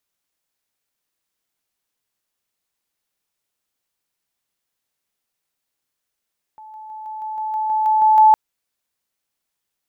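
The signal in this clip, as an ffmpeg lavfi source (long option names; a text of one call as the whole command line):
ffmpeg -f lavfi -i "aevalsrc='pow(10,(-37+3*floor(t/0.16))/20)*sin(2*PI*867*t)':duration=1.76:sample_rate=44100" out.wav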